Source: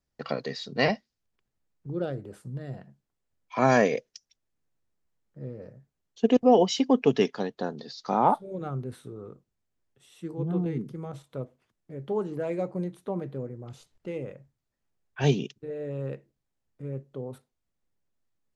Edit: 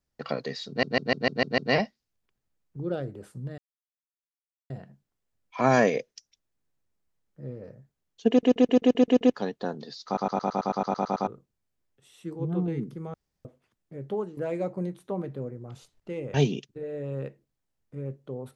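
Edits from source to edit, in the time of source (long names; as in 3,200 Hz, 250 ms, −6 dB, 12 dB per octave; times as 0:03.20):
0:00.68: stutter 0.15 s, 7 plays
0:02.68: splice in silence 1.12 s
0:06.28: stutter in place 0.13 s, 8 plays
0:08.04: stutter in place 0.11 s, 11 plays
0:11.12–0:11.43: fill with room tone
0:12.10–0:12.35: fade out, to −12 dB
0:14.32–0:15.21: remove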